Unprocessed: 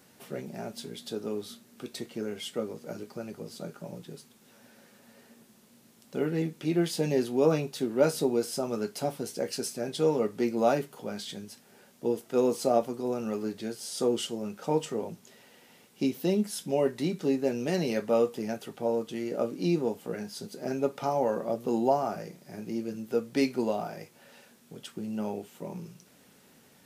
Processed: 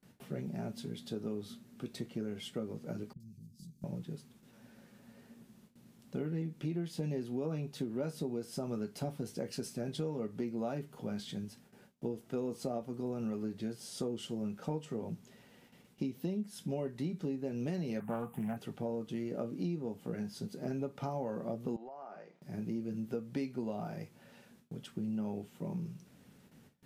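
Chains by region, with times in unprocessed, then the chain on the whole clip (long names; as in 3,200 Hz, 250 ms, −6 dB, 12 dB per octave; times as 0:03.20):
0:03.13–0:03.84: downward compressor 3 to 1, threshold −45 dBFS + three-band delay without the direct sound lows, highs, mids 70/790 ms, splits 210/4,500 Hz
0:18.00–0:18.57: drawn EQ curve 110 Hz 0 dB, 160 Hz +6 dB, 320 Hz −8 dB, 550 Hz −8 dB, 770 Hz +9 dB, 2,900 Hz −3 dB, 5,300 Hz −23 dB, 9,000 Hz +7 dB, 15,000 Hz +14 dB + highs frequency-modulated by the lows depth 0.17 ms
0:21.76–0:22.42: high-pass filter 640 Hz + downward compressor 16 to 1, threshold −35 dBFS + head-to-tape spacing loss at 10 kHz 25 dB
whole clip: bass and treble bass +12 dB, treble −4 dB; downward compressor 6 to 1, threshold −28 dBFS; noise gate with hold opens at −45 dBFS; level −5.5 dB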